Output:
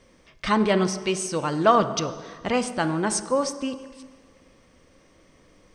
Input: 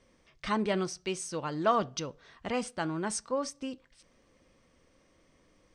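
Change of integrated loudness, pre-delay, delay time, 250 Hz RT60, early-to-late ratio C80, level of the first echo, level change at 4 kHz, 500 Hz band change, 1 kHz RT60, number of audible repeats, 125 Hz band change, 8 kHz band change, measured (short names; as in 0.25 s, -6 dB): +9.0 dB, 35 ms, none, 1.5 s, 13.0 dB, none, +8.5 dB, +9.0 dB, 1.6 s, none, +9.5 dB, +8.5 dB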